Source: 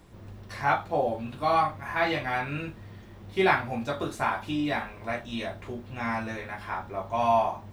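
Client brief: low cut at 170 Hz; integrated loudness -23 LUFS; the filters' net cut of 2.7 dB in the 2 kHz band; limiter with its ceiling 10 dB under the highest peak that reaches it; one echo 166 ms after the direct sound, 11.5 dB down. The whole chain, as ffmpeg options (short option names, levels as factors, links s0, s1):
-af "highpass=170,equalizer=f=2000:t=o:g=-3.5,alimiter=limit=0.1:level=0:latency=1,aecho=1:1:166:0.266,volume=2.82"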